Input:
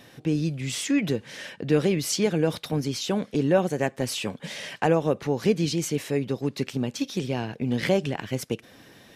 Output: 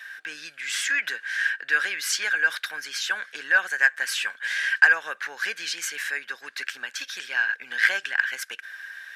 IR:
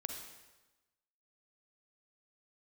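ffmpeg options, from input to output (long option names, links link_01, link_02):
-af "highpass=frequency=1600:width_type=q:width=15,acontrast=27,volume=-4dB"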